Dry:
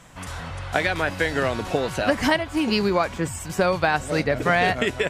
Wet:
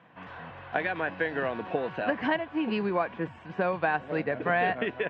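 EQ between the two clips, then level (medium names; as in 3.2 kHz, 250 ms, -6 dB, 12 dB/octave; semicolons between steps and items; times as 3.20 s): cabinet simulation 260–2300 Hz, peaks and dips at 270 Hz -5 dB, 390 Hz -6 dB, 580 Hz -7 dB, 860 Hz -5 dB, 1.3 kHz -10 dB, 2.1 kHz -9 dB; 0.0 dB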